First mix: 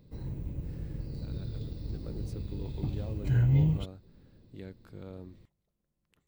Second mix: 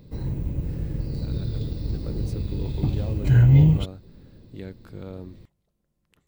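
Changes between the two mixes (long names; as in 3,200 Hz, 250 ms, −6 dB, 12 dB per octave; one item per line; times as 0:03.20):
speech +7.0 dB
background +9.5 dB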